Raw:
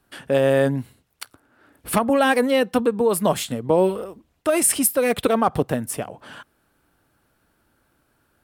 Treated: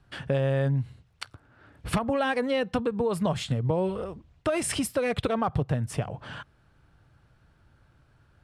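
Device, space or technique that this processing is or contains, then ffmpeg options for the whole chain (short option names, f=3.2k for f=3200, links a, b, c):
jukebox: -af "lowpass=5.4k,lowshelf=f=180:t=q:w=1.5:g=9.5,acompressor=threshold=-24dB:ratio=4"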